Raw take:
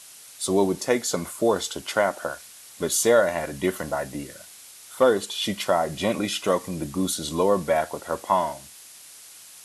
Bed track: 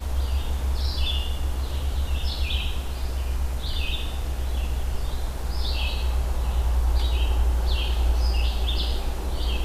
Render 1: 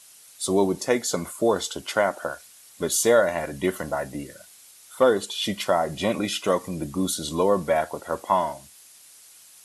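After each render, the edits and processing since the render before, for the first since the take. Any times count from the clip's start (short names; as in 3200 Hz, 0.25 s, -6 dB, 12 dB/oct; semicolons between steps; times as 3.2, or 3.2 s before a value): denoiser 6 dB, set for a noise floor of -46 dBFS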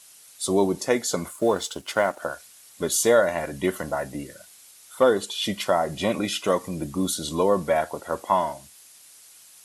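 1.28–2.22 G.711 law mismatch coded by A; 6.3–7.21 short-mantissa float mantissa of 6-bit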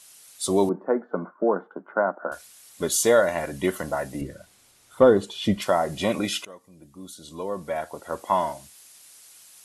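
0.69–2.32 Chebyshev band-pass 180–1500 Hz, order 4; 4.21–5.62 tilt -3 dB/oct; 6.45–8.47 fade in quadratic, from -22.5 dB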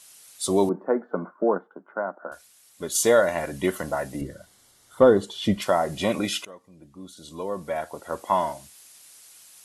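1.58–2.95 gain -6 dB; 4.16–5.43 notch 2500 Hz, Q 5.2; 6.5–7.17 high shelf 7500 Hz -12 dB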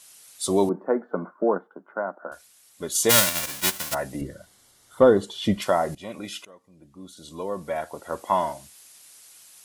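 3.09–3.93 spectral whitening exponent 0.1; 5.95–7.18 fade in, from -17 dB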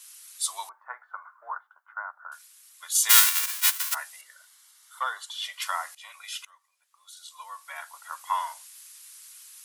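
steep high-pass 1000 Hz 36 dB/oct; high shelf 11000 Hz +5.5 dB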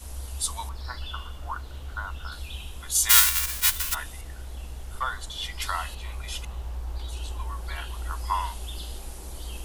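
add bed track -11.5 dB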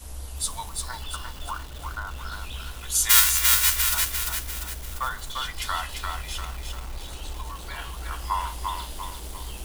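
shoebox room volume 750 m³, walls furnished, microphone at 0.43 m; lo-fi delay 0.346 s, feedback 55%, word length 7-bit, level -3 dB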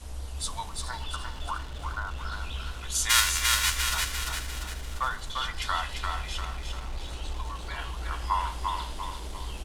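air absorption 55 m; echo 0.423 s -14.5 dB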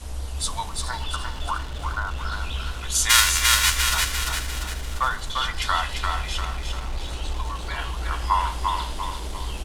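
gain +6 dB; limiter -3 dBFS, peak gain reduction 1.5 dB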